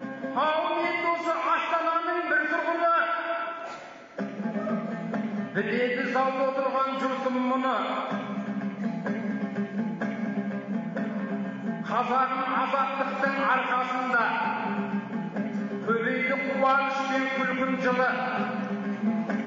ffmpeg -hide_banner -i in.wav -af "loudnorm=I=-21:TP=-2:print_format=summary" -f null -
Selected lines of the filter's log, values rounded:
Input Integrated:    -27.2 LUFS
Input True Peak:     -13.1 dBTP
Input LRA:             4.0 LU
Input Threshold:     -37.3 LUFS